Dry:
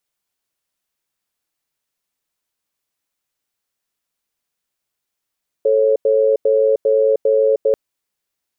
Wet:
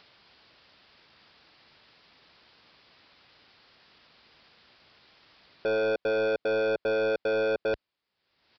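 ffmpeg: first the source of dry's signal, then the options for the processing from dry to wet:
-f lavfi -i "aevalsrc='0.2*(sin(2*PI*439*t)+sin(2*PI*548*t))*clip(min(mod(t,0.4),0.31-mod(t,0.4))/0.005,0,1)':d=2.09:s=44100"
-af "highpass=47,acompressor=mode=upward:threshold=-32dB:ratio=2.5,aresample=11025,asoftclip=type=tanh:threshold=-24.5dB,aresample=44100"

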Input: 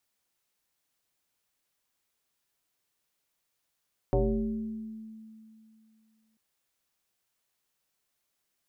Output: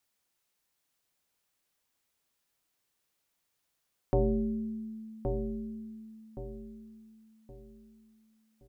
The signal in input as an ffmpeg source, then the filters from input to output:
-f lavfi -i "aevalsrc='0.0944*pow(10,-3*t/2.67)*sin(2*PI*220*t+2.7*pow(10,-3*t/1.54)*sin(2*PI*0.78*220*t))':d=2.24:s=44100"
-filter_complex "[0:a]asplit=2[a][b];[b]adelay=1120,lowpass=f=940:p=1,volume=-5dB,asplit=2[c][d];[d]adelay=1120,lowpass=f=940:p=1,volume=0.36,asplit=2[e][f];[f]adelay=1120,lowpass=f=940:p=1,volume=0.36,asplit=2[g][h];[h]adelay=1120,lowpass=f=940:p=1,volume=0.36[i];[a][c][e][g][i]amix=inputs=5:normalize=0"

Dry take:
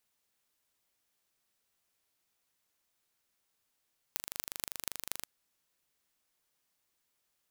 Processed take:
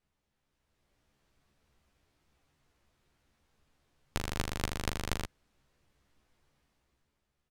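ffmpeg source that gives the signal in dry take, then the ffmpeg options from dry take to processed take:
-f lavfi -i "aevalsrc='0.531*eq(mod(n,1757),0)*(0.5+0.5*eq(mod(n,10542),0))':d=1.08:s=44100"
-filter_complex "[0:a]aemphasis=mode=reproduction:type=riaa,dynaudnorm=f=120:g=13:m=9dB,asplit=2[a][b];[b]adelay=14,volume=-4dB[c];[a][c]amix=inputs=2:normalize=0"

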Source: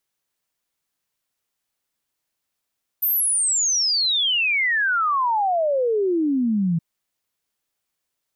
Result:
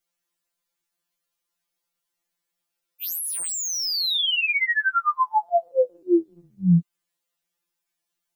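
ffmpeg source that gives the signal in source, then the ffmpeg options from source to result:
-f lavfi -i "aevalsrc='0.133*clip(min(t,3.77-t)/0.01,0,1)*sin(2*PI*14000*3.77/log(160/14000)*(exp(log(160/14000)*t/3.77)-1))':d=3.77:s=44100"
-filter_complex "[0:a]acrossover=split=400|1500|3800[a][b][c][d];[d]asoftclip=type=hard:threshold=-26dB[e];[a][b][c][e]amix=inputs=4:normalize=0,afftfilt=real='re*2.83*eq(mod(b,8),0)':imag='im*2.83*eq(mod(b,8),0)':win_size=2048:overlap=0.75"

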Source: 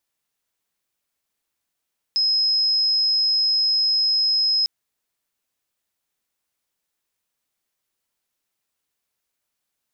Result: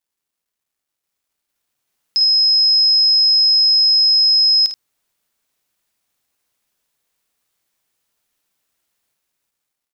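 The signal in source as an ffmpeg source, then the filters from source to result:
-f lavfi -i "aevalsrc='0.15*sin(2*PI*5120*t)':d=2.5:s=44100"
-af "dynaudnorm=f=690:g=5:m=6dB,acrusher=bits=11:mix=0:aa=0.000001,aecho=1:1:37|51|80:0.133|0.422|0.2"

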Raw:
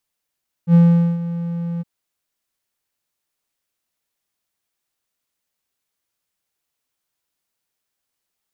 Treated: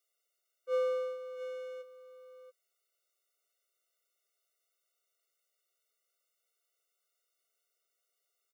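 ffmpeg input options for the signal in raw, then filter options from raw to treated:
-f lavfi -i "aevalsrc='0.596*(1-4*abs(mod(170*t+0.25,1)-0.5))':d=1.165:s=44100,afade=t=in:d=0.072,afade=t=out:st=0.072:d=0.436:silence=0.178,afade=t=out:st=1.14:d=0.025"
-filter_complex "[0:a]highpass=f=240:w=0.5412,highpass=f=240:w=1.3066,asplit=2[a][b];[b]aecho=0:1:681:0.299[c];[a][c]amix=inputs=2:normalize=0,afftfilt=real='re*eq(mod(floor(b*sr/1024/380),2),1)':imag='im*eq(mod(floor(b*sr/1024/380),2),1)':win_size=1024:overlap=0.75"

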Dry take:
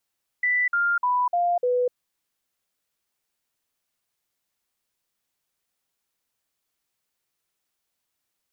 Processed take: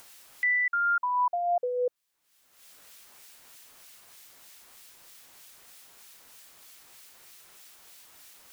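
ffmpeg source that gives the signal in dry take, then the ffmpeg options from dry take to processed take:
-f lavfi -i "aevalsrc='0.112*clip(min(mod(t,0.3),0.25-mod(t,0.3))/0.005,0,1)*sin(2*PI*1980*pow(2,-floor(t/0.3)/2)*mod(t,0.3))':d=1.5:s=44100"
-filter_complex "[0:a]acrossover=split=1700[a][b];[a]aeval=exprs='val(0)*(1-0.5/2+0.5/2*cos(2*PI*3.2*n/s))':c=same[c];[b]aeval=exprs='val(0)*(1-0.5/2-0.5/2*cos(2*PI*3.2*n/s))':c=same[d];[c][d]amix=inputs=2:normalize=0,acompressor=mode=upward:threshold=-29dB:ratio=2.5,lowshelf=f=410:g=-7"

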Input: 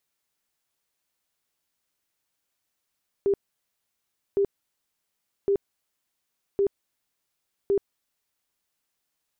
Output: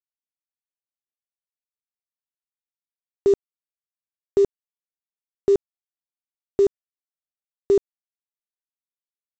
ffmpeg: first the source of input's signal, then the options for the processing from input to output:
-f lavfi -i "aevalsrc='0.119*sin(2*PI*398*mod(t,1.11))*lt(mod(t,1.11),31/398)':d=5.55:s=44100"
-af "acontrast=88,aresample=16000,acrusher=bits=6:mix=0:aa=0.000001,aresample=44100"

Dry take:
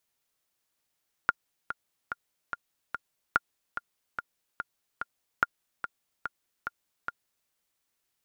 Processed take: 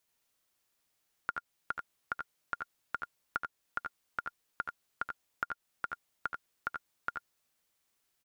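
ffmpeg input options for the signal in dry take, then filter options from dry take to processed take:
-f lavfi -i "aevalsrc='pow(10,(-8.5-10.5*gte(mod(t,5*60/145),60/145))/20)*sin(2*PI*1410*mod(t,60/145))*exp(-6.91*mod(t,60/145)/0.03)':d=6.2:s=44100"
-filter_complex "[0:a]alimiter=limit=-18dB:level=0:latency=1:release=254,asplit=2[a][b];[b]aecho=0:1:75|88:0.355|0.531[c];[a][c]amix=inputs=2:normalize=0"

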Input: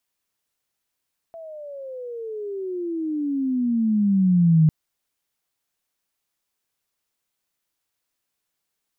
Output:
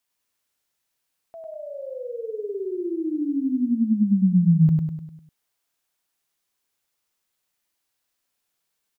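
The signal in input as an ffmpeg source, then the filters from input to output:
-f lavfi -i "aevalsrc='pow(10,(-11.5+24*(t/3.35-1))/20)*sin(2*PI*670*3.35/(-25.5*log(2)/12)*(exp(-25.5*log(2)/12*t/3.35)-1))':d=3.35:s=44100"
-filter_complex "[0:a]lowshelf=f=390:g=-3,asplit=2[a][b];[b]aecho=0:1:100|200|300|400|500|600:0.708|0.347|0.17|0.0833|0.0408|0.02[c];[a][c]amix=inputs=2:normalize=0"

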